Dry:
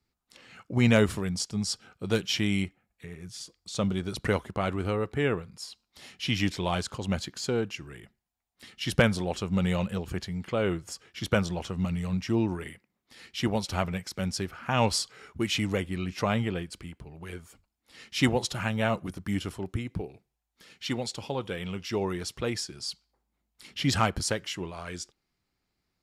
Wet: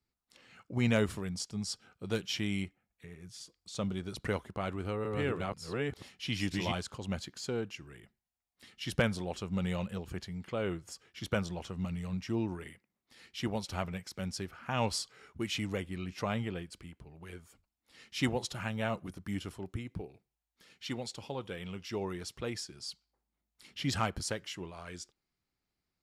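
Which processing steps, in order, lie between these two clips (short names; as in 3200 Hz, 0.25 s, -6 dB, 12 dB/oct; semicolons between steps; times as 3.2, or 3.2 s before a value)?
4.56–6.72 reverse delay 0.488 s, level -1 dB; gain -7 dB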